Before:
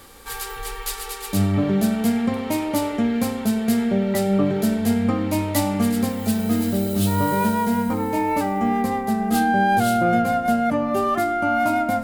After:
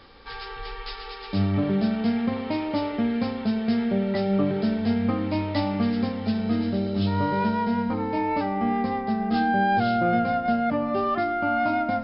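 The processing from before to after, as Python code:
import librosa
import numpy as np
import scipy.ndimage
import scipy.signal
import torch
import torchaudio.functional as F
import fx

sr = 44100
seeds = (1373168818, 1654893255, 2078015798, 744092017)

y = fx.brickwall_lowpass(x, sr, high_hz=5400.0)
y = y * librosa.db_to_amplitude(-3.5)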